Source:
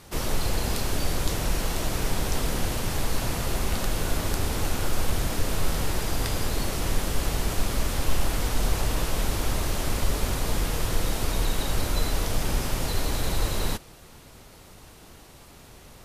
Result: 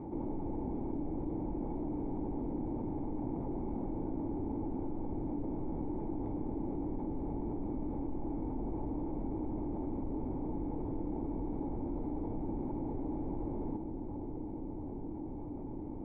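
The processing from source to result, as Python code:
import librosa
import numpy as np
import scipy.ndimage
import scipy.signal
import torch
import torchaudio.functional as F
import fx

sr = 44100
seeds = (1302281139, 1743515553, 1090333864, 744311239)

y = fx.formant_cascade(x, sr, vowel='u')
y = fx.low_shelf(y, sr, hz=100.0, db=-6.0)
y = fx.echo_filtered(y, sr, ms=681, feedback_pct=73, hz=1300.0, wet_db=-15)
y = fx.env_flatten(y, sr, amount_pct=70)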